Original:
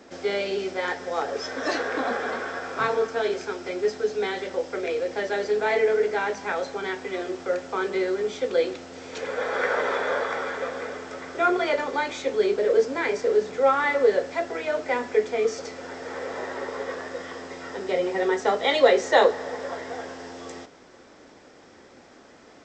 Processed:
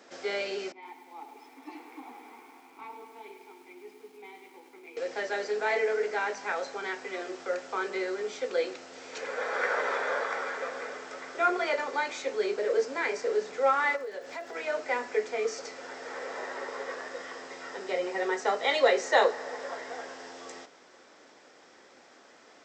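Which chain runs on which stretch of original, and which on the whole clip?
0:00.72–0:04.97: formant filter u + feedback echo at a low word length 103 ms, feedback 80%, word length 9 bits, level −9 dB
0:13.95–0:14.55: downward compressor 3 to 1, threshold −32 dBFS + surface crackle 180 per second −49 dBFS
whole clip: high-pass filter 640 Hz 6 dB per octave; dynamic equaliser 3,400 Hz, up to −6 dB, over −56 dBFS, Q 6.7; level −2 dB

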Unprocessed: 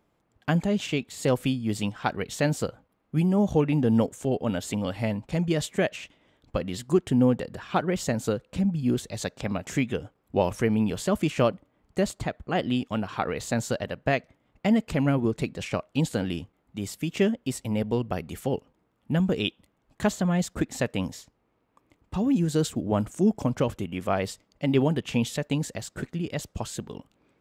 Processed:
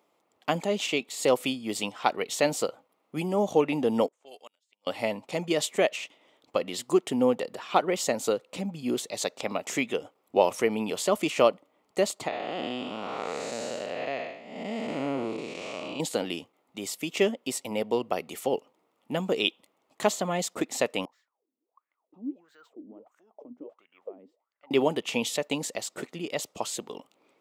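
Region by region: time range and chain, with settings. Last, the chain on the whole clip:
0:04.08–0:04.87: low-pass that shuts in the quiet parts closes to 660 Hz, open at −21.5 dBFS + first difference + gate with flip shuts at −34 dBFS, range −34 dB
0:12.28–0:16.00: spectrum smeared in time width 307 ms + low-pass filter 7,800 Hz
0:21.05–0:24.71: downward compressor 3 to 1, threshold −24 dBFS + LFO wah 1.5 Hz 240–1,700 Hz, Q 12 + linearly interpolated sample-rate reduction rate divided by 2×
whole clip: high-pass filter 410 Hz 12 dB per octave; parametric band 1,600 Hz −11.5 dB 0.26 octaves; level +4 dB

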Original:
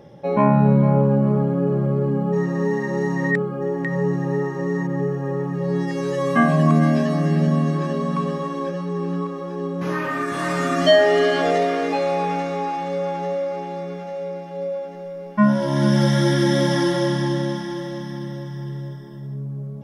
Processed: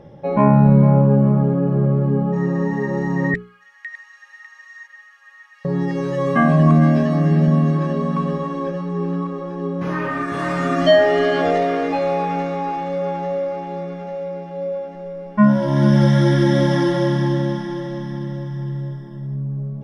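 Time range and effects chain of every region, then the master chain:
0:03.34–0:05.65: inverse Chebyshev high-pass filter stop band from 310 Hz, stop band 80 dB + single-tap delay 599 ms −11.5 dB
whole clip: low-pass filter 2,800 Hz 6 dB per octave; low-shelf EQ 87 Hz +11.5 dB; mains-hum notches 60/120/180/240/300/360/420 Hz; level +1.5 dB

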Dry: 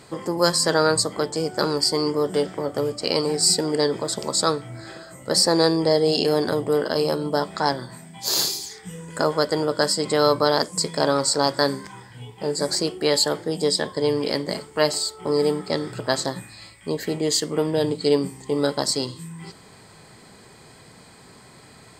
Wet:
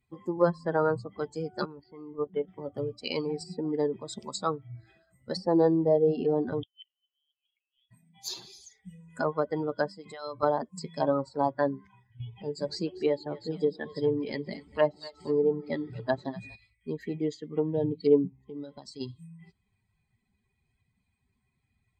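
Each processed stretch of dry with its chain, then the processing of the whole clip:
0:01.65–0:02.48: low-pass filter 3,000 Hz 24 dB per octave + output level in coarse steps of 10 dB
0:06.63–0:07.91: compressor whose output falls as the input rises −33 dBFS + gate with flip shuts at −27 dBFS, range −27 dB + voice inversion scrambler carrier 3,500 Hz
0:09.95–0:10.43: downward compressor 2 to 1, threshold −27 dBFS + mains-hum notches 50/100/150/200/250/300/350/400/450/500 Hz
0:12.20–0:16.56: low-pass filter 8,200 Hz + upward compression, threshold −27 dBFS + echo with a time of its own for lows and highs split 360 Hz, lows 180 ms, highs 240 ms, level −11 dB
0:18.30–0:19.01: downward compressor 8 to 1, threshold −23 dBFS + high-frequency loss of the air 51 metres
whole clip: spectral dynamics exaggerated over time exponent 2; treble cut that deepens with the level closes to 1,000 Hz, closed at −22.5 dBFS

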